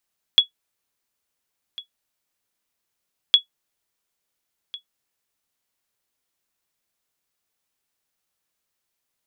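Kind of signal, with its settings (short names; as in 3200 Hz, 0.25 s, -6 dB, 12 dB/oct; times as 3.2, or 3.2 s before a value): sonar ping 3370 Hz, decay 0.11 s, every 2.96 s, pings 2, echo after 1.40 s, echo -21 dB -3.5 dBFS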